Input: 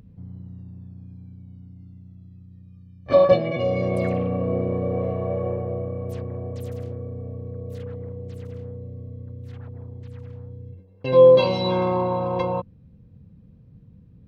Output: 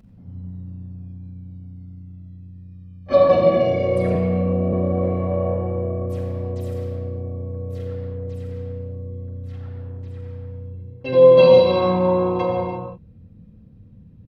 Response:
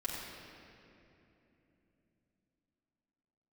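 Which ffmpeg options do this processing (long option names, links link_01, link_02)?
-filter_complex "[0:a]aresample=32000,aresample=44100[link_01];[1:a]atrim=start_sample=2205,afade=type=out:start_time=0.41:duration=0.01,atrim=end_sample=18522[link_02];[link_01][link_02]afir=irnorm=-1:irlink=0,asettb=1/sr,asplit=3[link_03][link_04][link_05];[link_03]atrim=end=4.154[link_06];[link_04]atrim=start=4.15:end=4.73,asetpts=PTS-STARTPTS,afade=type=in:duration=0.004:curve=qsin,afade=type=out:start_time=0.576:duration=0.004:curve=qsin,acrossover=split=260|3000[link_07][link_08][link_09];[link_08]acompressor=threshold=-22dB:ratio=6[link_10];[link_07][link_10][link_09]amix=inputs=3:normalize=0[link_11];[link_05]atrim=start=4.726[link_12];[link_06][link_11]acrossfade=duration=0.004:curve1=hsin:curve2=qsin[link_13];[link_13][link_12]acrossfade=duration=0.004:curve1=qsin:curve2=hsin"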